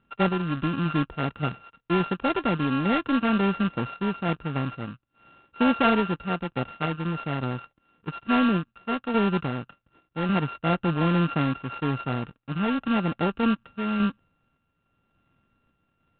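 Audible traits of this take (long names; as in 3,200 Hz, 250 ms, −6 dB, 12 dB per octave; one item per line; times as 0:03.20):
a buzz of ramps at a fixed pitch in blocks of 32 samples
sample-and-hold tremolo
IMA ADPCM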